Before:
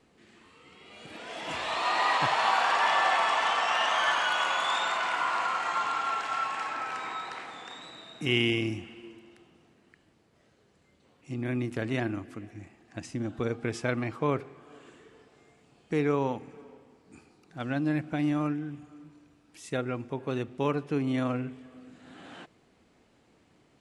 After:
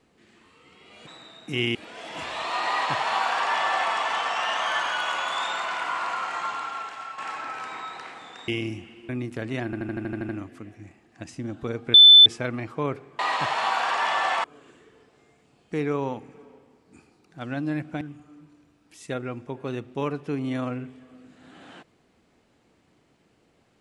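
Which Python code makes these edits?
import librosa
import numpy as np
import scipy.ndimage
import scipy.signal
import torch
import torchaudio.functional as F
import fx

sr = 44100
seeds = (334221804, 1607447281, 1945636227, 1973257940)

y = fx.edit(x, sr, fx.duplicate(start_s=2.0, length_s=1.25, to_s=14.63),
    fx.fade_out_to(start_s=5.68, length_s=0.82, floor_db=-9.0),
    fx.move(start_s=7.8, length_s=0.68, to_s=1.07),
    fx.cut(start_s=9.09, length_s=2.4),
    fx.stutter(start_s=12.05, slice_s=0.08, count=9),
    fx.insert_tone(at_s=13.7, length_s=0.32, hz=3520.0, db=-7.0),
    fx.cut(start_s=18.2, length_s=0.44), tone=tone)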